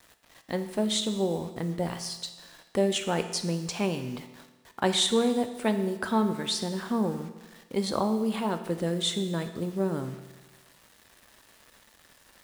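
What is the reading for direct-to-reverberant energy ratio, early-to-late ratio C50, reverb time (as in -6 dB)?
8.0 dB, 10.0 dB, 1.2 s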